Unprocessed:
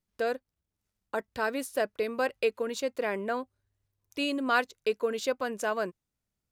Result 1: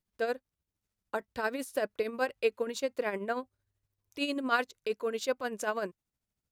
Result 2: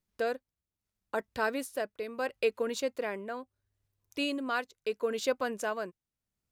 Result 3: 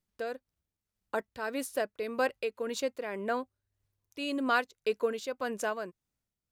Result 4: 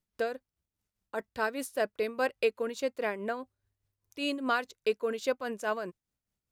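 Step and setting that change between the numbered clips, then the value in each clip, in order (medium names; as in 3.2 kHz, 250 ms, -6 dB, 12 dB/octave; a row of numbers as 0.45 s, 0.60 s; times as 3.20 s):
tremolo, rate: 13 Hz, 0.75 Hz, 1.8 Hz, 4.9 Hz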